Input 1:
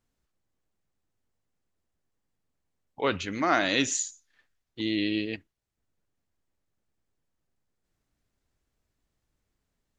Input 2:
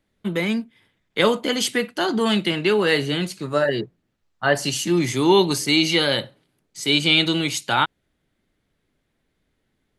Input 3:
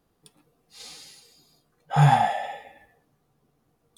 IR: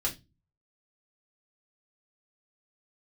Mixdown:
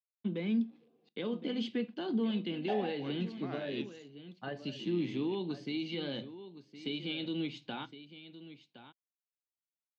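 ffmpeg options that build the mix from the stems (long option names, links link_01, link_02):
-filter_complex "[0:a]aeval=exprs='sgn(val(0))*max(abs(val(0))-0.00944,0)':channel_layout=same,volume=-15.5dB[link_01];[1:a]lowshelf=frequency=340:gain=8.5,alimiter=limit=-12.5dB:level=0:latency=1:release=270,aeval=exprs='val(0)*gte(abs(val(0)),0.00266)':channel_layout=same,volume=-14dB,asplit=3[link_02][link_03][link_04];[link_03]volume=-16dB[link_05];[link_04]volume=-12.5dB[link_06];[2:a]equalizer=frequency=420:width=1.4:gain=8,adelay=350,volume=-6dB,asplit=3[link_07][link_08][link_09];[link_07]atrim=end=1.09,asetpts=PTS-STARTPTS,afade=type=out:start_time=1.086:duration=0.004:curve=hsin[link_10];[link_08]atrim=start=1.09:end=2.68,asetpts=PTS-STARTPTS,volume=0[link_11];[link_09]atrim=start=2.68,asetpts=PTS-STARTPTS,afade=type=in:duration=0.004:curve=hsin[link_12];[link_10][link_11][link_12]concat=n=3:v=0:a=1,asplit=2[link_13][link_14];[link_14]volume=-22.5dB[link_15];[3:a]atrim=start_sample=2205[link_16];[link_05][link_15]amix=inputs=2:normalize=0[link_17];[link_17][link_16]afir=irnorm=-1:irlink=0[link_18];[link_06]aecho=0:1:1065:1[link_19];[link_01][link_02][link_13][link_18][link_19]amix=inputs=5:normalize=0,highpass=190,equalizer=frequency=230:width_type=q:width=4:gain=6,equalizer=frequency=600:width_type=q:width=4:gain=-4,equalizer=frequency=900:width_type=q:width=4:gain=-5,equalizer=frequency=1300:width_type=q:width=4:gain=-10,equalizer=frequency=1900:width_type=q:width=4:gain=-8,lowpass=frequency=3700:width=0.5412,lowpass=frequency=3700:width=1.3066"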